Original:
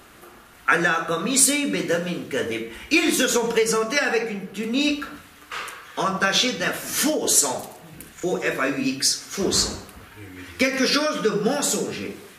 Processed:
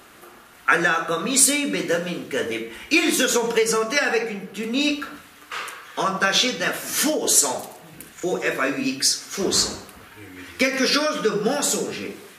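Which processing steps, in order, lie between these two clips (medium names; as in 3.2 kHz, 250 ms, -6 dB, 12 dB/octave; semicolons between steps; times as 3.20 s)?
bass shelf 120 Hz -9.5 dB; trim +1 dB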